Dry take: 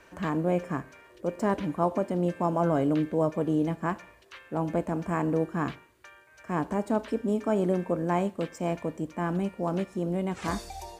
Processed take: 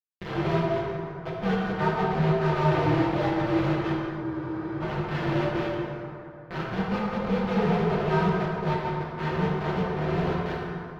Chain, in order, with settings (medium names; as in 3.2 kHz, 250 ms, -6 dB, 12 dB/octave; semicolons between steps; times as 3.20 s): frequency axis rescaled in octaves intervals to 129%; high-pass 67 Hz 12 dB/octave; one-sided clip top -30.5 dBFS; bit crusher 5-bit; distance through air 290 m; comb of notches 280 Hz; plate-style reverb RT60 2.7 s, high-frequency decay 0.5×, DRR -4.5 dB; spectral freeze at 4.24 s, 0.57 s